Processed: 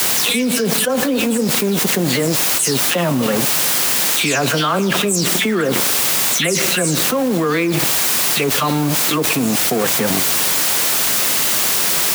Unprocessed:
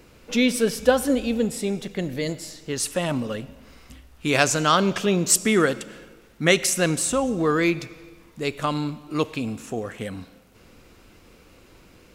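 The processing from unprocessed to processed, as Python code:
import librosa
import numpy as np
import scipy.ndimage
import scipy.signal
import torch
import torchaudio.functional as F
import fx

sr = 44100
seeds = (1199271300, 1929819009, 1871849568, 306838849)

y = fx.spec_delay(x, sr, highs='early', ms=203)
y = np.sign(y) * np.maximum(np.abs(y) - 10.0 ** (-36.0 / 20.0), 0.0)
y = fx.dmg_noise_colour(y, sr, seeds[0], colour='white', level_db=-43.0)
y = scipy.signal.sosfilt(scipy.signal.butter(4, 110.0, 'highpass', fs=sr, output='sos'), y)
y = fx.env_flatten(y, sr, amount_pct=100)
y = y * 10.0 ** (-4.0 / 20.0)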